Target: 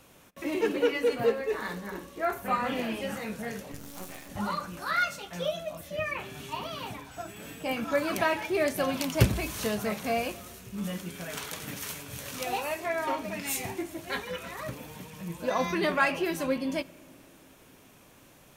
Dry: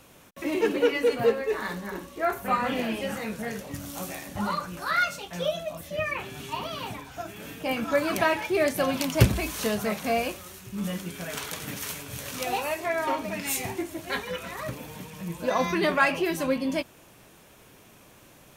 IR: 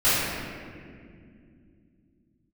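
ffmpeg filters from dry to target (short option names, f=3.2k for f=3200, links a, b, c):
-filter_complex "[0:a]asettb=1/sr,asplit=3[a][b][c];[a]atrim=end=3.724[d];[b]atrim=start=3.72:end=4.3,asetpts=PTS-STARTPTS,afade=t=in:d=0.004:c=qsin,afade=t=out:st=0.576:d=0.004:c=qsin,aeval=exprs='max(val(0),0)':c=same[e];[c]atrim=start=4.296[f];[d][e]acrossfade=d=0.004:c1=hsin:c2=qsin[g];[g][f]acrossfade=d=0.004:c1=qsin:c2=hsin,asettb=1/sr,asplit=3[h][i][j];[h]atrim=end=7.114[k];[i]atrim=start=7.11:end=7.71,asetpts=PTS-STARTPTS,afade=t=in:d=0.004:c=qsin,afade=t=out:st=0.596:d=0.004:c=qsin,aeval=exprs='val(0)+0.00251*sin(2*PI*7900*n/s)':c=same[l];[j]atrim=start=7.706[m];[k][l]acrossfade=d=0.004:c1=hsin:c2=qsin[n];[n][m]acrossfade=d=0.004:c1=qsin:c2=hsin,asplit=2[o][p];[1:a]atrim=start_sample=2205[q];[p][q]afir=irnorm=-1:irlink=0,volume=-39.5dB[r];[o][r]amix=inputs=2:normalize=0,volume=-3dB"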